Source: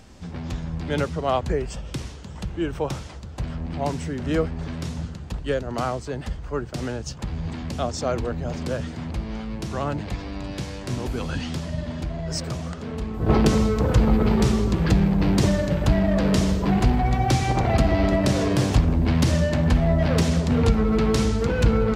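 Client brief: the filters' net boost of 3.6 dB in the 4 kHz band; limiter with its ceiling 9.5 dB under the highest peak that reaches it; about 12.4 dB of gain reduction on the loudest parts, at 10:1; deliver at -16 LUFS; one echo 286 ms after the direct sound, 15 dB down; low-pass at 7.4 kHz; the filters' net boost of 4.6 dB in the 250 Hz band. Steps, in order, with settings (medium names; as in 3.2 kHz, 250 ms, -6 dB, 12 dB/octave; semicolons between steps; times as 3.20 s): low-pass 7.4 kHz; peaking EQ 250 Hz +6 dB; peaking EQ 4 kHz +5 dB; compression 10:1, threshold -24 dBFS; peak limiter -24.5 dBFS; delay 286 ms -15 dB; trim +17 dB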